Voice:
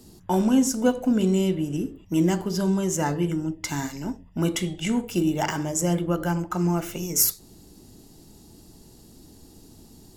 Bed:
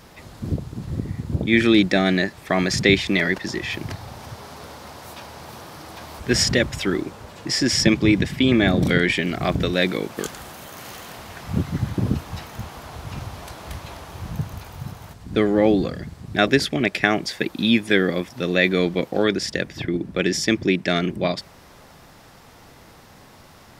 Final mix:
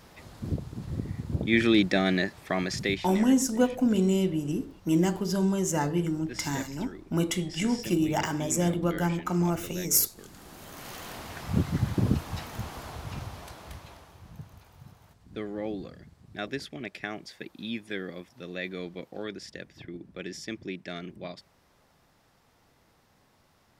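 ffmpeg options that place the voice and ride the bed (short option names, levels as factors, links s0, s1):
-filter_complex "[0:a]adelay=2750,volume=0.75[s0];[1:a]volume=4.22,afade=t=out:st=2.32:d=0.92:silence=0.16788,afade=t=in:st=10.26:d=0.81:silence=0.11885,afade=t=out:st=12.8:d=1.4:silence=0.199526[s1];[s0][s1]amix=inputs=2:normalize=0"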